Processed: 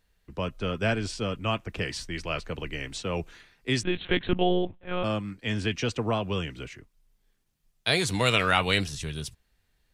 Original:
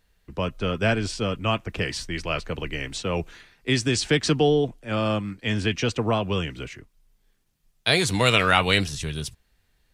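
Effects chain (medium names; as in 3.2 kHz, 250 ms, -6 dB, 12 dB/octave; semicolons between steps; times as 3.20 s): 3.83–5.04 s: monotone LPC vocoder at 8 kHz 180 Hz; trim -4 dB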